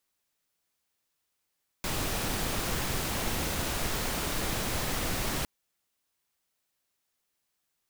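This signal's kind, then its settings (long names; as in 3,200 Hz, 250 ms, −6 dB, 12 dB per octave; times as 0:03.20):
noise pink, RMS −31 dBFS 3.61 s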